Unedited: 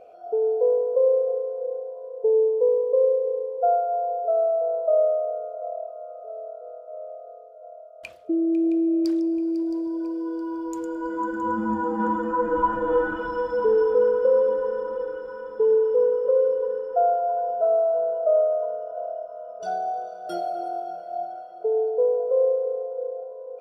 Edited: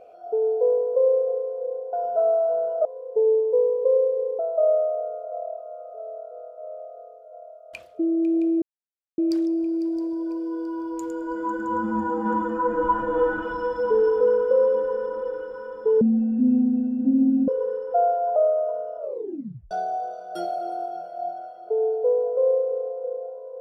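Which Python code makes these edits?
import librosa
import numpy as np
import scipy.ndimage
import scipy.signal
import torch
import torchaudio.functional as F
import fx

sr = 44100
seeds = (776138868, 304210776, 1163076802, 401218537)

y = fx.edit(x, sr, fx.cut(start_s=3.47, length_s=1.22),
    fx.insert_silence(at_s=8.92, length_s=0.56),
    fx.speed_span(start_s=15.75, length_s=0.75, speed=0.51),
    fx.move(start_s=17.38, length_s=0.92, to_s=1.93),
    fx.tape_stop(start_s=18.92, length_s=0.73), tone=tone)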